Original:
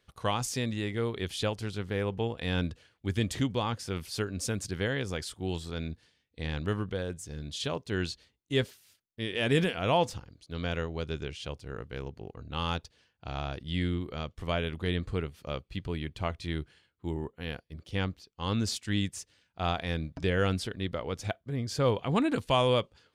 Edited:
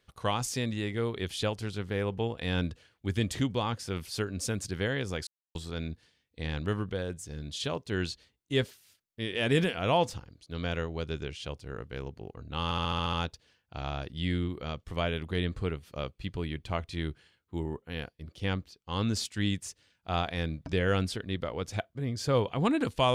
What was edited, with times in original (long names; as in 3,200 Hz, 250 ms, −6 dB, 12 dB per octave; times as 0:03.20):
0:05.27–0:05.55: silence
0:12.64: stutter 0.07 s, 8 plays